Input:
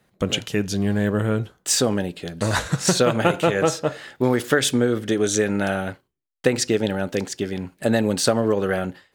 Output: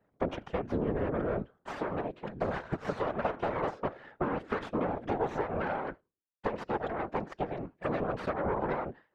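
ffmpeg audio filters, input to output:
-af "aeval=exprs='0.596*(cos(1*acos(clip(val(0)/0.596,-1,1)))-cos(1*PI/2))+0.237*(cos(8*acos(clip(val(0)/0.596,-1,1)))-cos(8*PI/2))':c=same,highpass=f=190:p=1,acompressor=threshold=0.0891:ratio=5,afftfilt=real='hypot(re,im)*cos(2*PI*random(0))':imag='hypot(re,im)*sin(2*PI*random(1))':win_size=512:overlap=0.75,lowpass=1300"

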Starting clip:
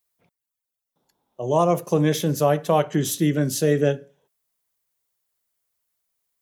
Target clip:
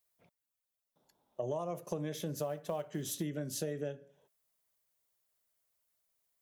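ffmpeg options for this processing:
-filter_complex "[0:a]equalizer=f=610:t=o:w=0.23:g=6,acompressor=threshold=0.0316:ratio=16,asettb=1/sr,asplit=3[s0][s1][s2];[s0]atrim=end=2.344[s3];[s1]atrim=start=2.34:end=3.23,asetpts=PTS-STARTPTS,afade=t=in:d=0.004:c=qsin,afade=t=out:st=0.886:d=0.004:c=qsin,acrusher=bits=8:mode=log:mix=0:aa=0.000001[s4];[s2]atrim=start=3.226[s5];[s3][s4]acrossfade=d=0.004:c1=hsin:c2=qsin[s6];[s6][s5]acrossfade=d=0.004:c1=qsin:c2=hsin,volume=0.668"

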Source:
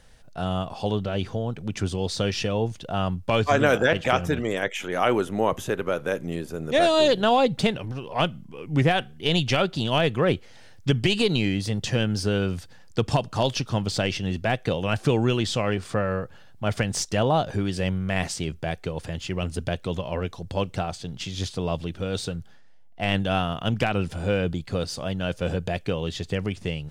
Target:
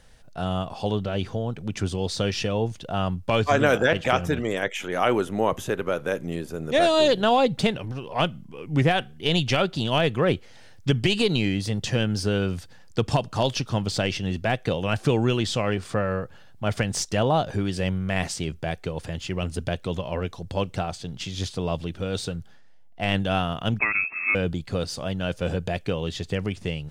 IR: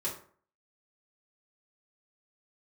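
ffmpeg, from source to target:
-filter_complex "[0:a]asettb=1/sr,asplit=3[s0][s1][s2];[s0]atrim=end=23.794[s3];[s1]atrim=start=23.79:end=24.35,asetpts=PTS-STARTPTS,afade=t=in:d=0.004:c=qsin,afade=t=out:st=0.556:d=0.004:c=qsin,lowpass=f=2300:t=q:w=0.5098,lowpass=f=2300:t=q:w=0.6013,lowpass=f=2300:t=q:w=0.9,lowpass=f=2300:t=q:w=2.563,afreqshift=-2700[s4];[s2]atrim=start=24.346[s5];[s3][s4]acrossfade=d=0.004:c1=hsin:c2=qsin[s6];[s6][s5]acrossfade=d=0.004:c1=qsin:c2=hsin"

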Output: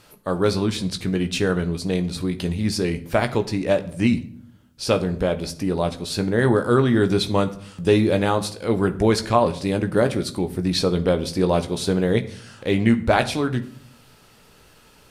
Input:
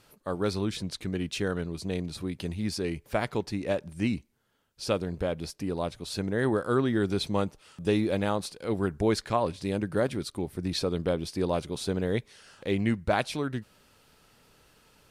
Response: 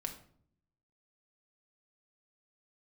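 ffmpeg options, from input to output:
-filter_complex "[0:a]asplit=2[s0][s1];[1:a]atrim=start_sample=2205,asetrate=39249,aresample=44100,adelay=17[s2];[s1][s2]afir=irnorm=-1:irlink=0,volume=0.422[s3];[s0][s3]amix=inputs=2:normalize=0,volume=2.37"

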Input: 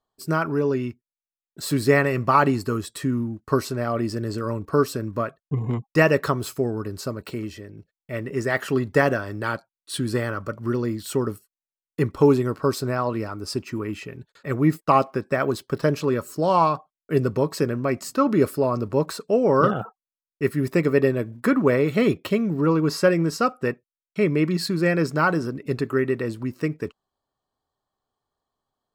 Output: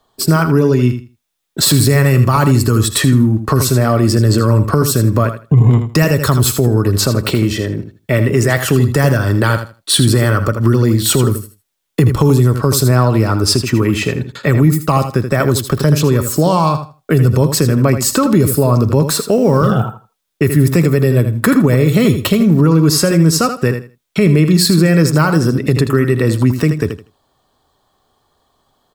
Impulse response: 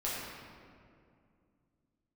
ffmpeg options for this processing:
-filter_complex "[0:a]acrossover=split=140|6200[s0][s1][s2];[s1]acompressor=threshold=0.02:ratio=5[s3];[s0][s3][s2]amix=inputs=3:normalize=0,equalizer=f=3500:w=5.5:g=5,asplit=2[s4][s5];[s5]aecho=0:1:80|160|240:0.316|0.0601|0.0114[s6];[s4][s6]amix=inputs=2:normalize=0,asettb=1/sr,asplit=3[s7][s8][s9];[s7]atrim=end=19.074[s10];[s8]atrim=start=19.07:end=19.68,asetpts=PTS-STARTPTS,afade=t=in:d=0.004:c=qsin,afade=t=out:st=0.606:d=0.004:c=qsin,acrusher=bits=9:mode=log:mix=0:aa=0.000001[s11];[s9]atrim=start=19.676[s12];[s10][s11]acrossfade=d=0.004:c1=hsin:c2=qsin[s13];[s13][s12]acrossfade=d=0.004:c1=qsin:c2=hsin,acontrast=88,alimiter=level_in=5.62:limit=0.891:release=50:level=0:latency=1,volume=0.891"

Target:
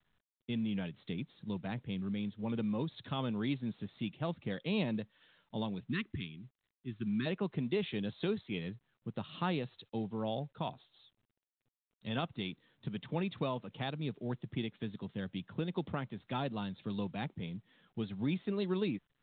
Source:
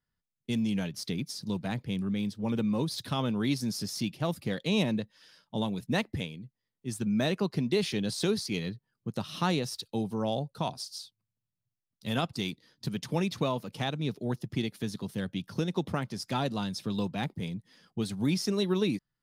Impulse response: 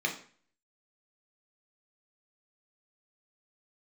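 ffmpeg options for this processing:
-filter_complex "[0:a]asplit=3[s0][s1][s2];[s0]afade=t=out:st=5.86:d=0.02[s3];[s1]asuperstop=centerf=660:order=12:qfactor=0.99,afade=t=in:st=5.86:d=0.02,afade=t=out:st=7.25:d=0.02[s4];[s2]afade=t=in:st=7.25:d=0.02[s5];[s3][s4][s5]amix=inputs=3:normalize=0,volume=0.501" -ar 8000 -c:a pcm_mulaw

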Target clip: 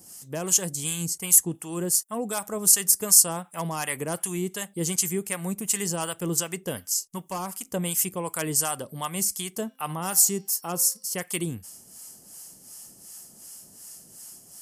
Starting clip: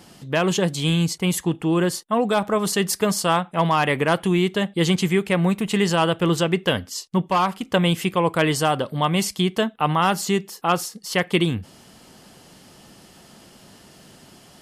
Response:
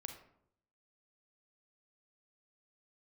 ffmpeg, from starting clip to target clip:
-filter_complex "[0:a]acrossover=split=730[s0][s1];[s0]aeval=exprs='val(0)*(1-0.7/2+0.7/2*cos(2*PI*2.7*n/s))':c=same[s2];[s1]aeval=exprs='val(0)*(1-0.7/2-0.7/2*cos(2*PI*2.7*n/s))':c=same[s3];[s2][s3]amix=inputs=2:normalize=0,asettb=1/sr,asplit=3[s4][s5][s6];[s4]atrim=end=9.544[s7];[s5]atrim=start=9.54:end=11.14,asetpts=PTS-STARTPTS,afade=t=in:d=0.004:c=qsin,afade=t=out:st=1.596:d=0.004:c=qsin,bandreject=f=262.3:t=h:w=4,bandreject=f=524.6:t=h:w=4,bandreject=f=786.9:t=h:w=4,bandreject=f=1049.2:t=h:w=4,bandreject=f=1311.5:t=h:w=4,bandreject=f=1573.8:t=h:w=4,bandreject=f=1836.1:t=h:w=4,bandreject=f=2098.4:t=h:w=4,bandreject=f=2360.7:t=h:w=4,bandreject=f=2623:t=h:w=4,bandreject=f=2885.3:t=h:w=4,bandreject=f=3147.6:t=h:w=4,bandreject=f=3409.9:t=h:w=4,bandreject=f=3672.2:t=h:w=4,bandreject=f=3934.5:t=h:w=4,bandreject=f=4196.8:t=h:w=4,bandreject=f=4459.1:t=h:w=4,bandreject=f=4721.4:t=h:w=4,bandreject=f=4983.7:t=h:w=4,bandreject=f=5246:t=h:w=4,bandreject=f=5508.3:t=h:w=4,bandreject=f=5770.6:t=h:w=4[s8];[s6]atrim=start=11.136[s9];[s7][s8]acrossfade=d=0.004:c1=hsin:c2=qsin[s10];[s10][s9]acrossfade=d=0.004:c1=qsin:c2=hsin,aexciter=amount=14.4:drive=2.8:freq=5500,volume=0.398"

